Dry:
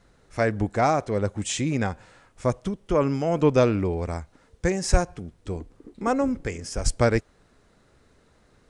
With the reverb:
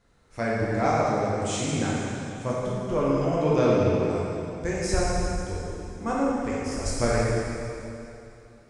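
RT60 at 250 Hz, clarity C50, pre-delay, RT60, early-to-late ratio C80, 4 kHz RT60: 2.8 s, -3.0 dB, 6 ms, 2.8 s, -1.5 dB, 2.6 s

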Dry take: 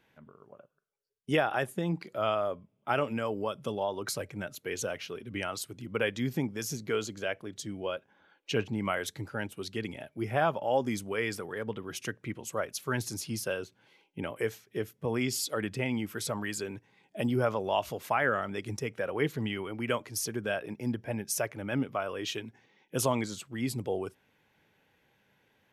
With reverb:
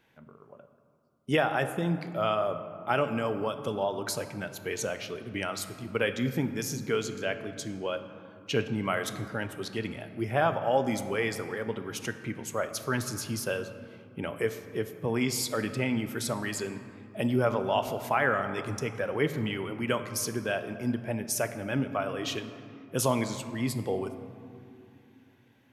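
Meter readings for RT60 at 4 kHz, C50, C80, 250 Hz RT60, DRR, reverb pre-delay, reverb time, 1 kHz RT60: 1.2 s, 10.5 dB, 11.5 dB, 4.2 s, 9.0 dB, 7 ms, 2.8 s, 2.8 s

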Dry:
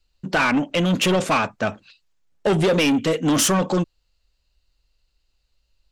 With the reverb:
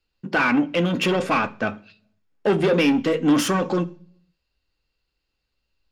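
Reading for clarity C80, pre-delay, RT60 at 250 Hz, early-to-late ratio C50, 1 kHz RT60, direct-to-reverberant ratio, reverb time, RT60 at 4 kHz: 25.0 dB, 3 ms, 0.75 s, 20.5 dB, 0.40 s, 9.0 dB, 0.50 s, 0.55 s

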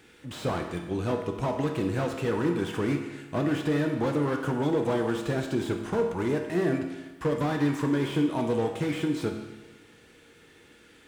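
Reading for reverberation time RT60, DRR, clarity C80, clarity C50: 1.2 s, 2.5 dB, 8.0 dB, 6.0 dB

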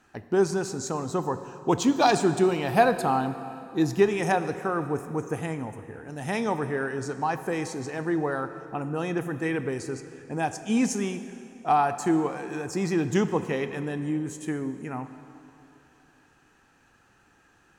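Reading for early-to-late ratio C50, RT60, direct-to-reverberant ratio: 11.0 dB, 2.9 s, 10.0 dB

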